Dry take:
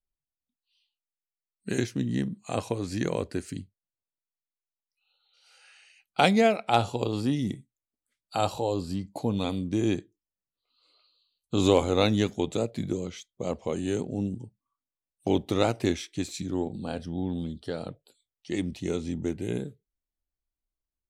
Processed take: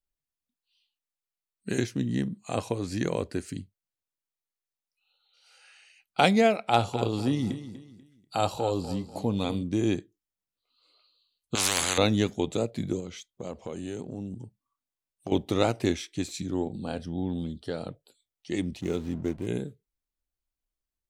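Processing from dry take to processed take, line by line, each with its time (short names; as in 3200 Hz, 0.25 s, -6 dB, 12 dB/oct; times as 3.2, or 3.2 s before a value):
6.54–9.63 feedback echo 0.244 s, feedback 32%, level -13 dB
11.55–11.98 spectral compressor 10:1
13–15.32 compressor 2.5:1, threshold -34 dBFS
18.81–19.47 backlash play -39.5 dBFS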